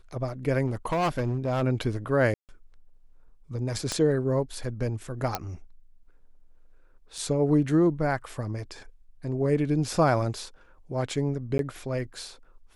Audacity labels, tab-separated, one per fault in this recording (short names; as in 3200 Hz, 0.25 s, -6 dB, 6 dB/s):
0.660000	1.620000	clipped -22 dBFS
2.340000	2.490000	gap 0.148 s
3.920000	3.920000	pop -15 dBFS
5.350000	5.350000	pop -11 dBFS
7.180000	7.180000	gap 2.7 ms
11.580000	11.590000	gap 12 ms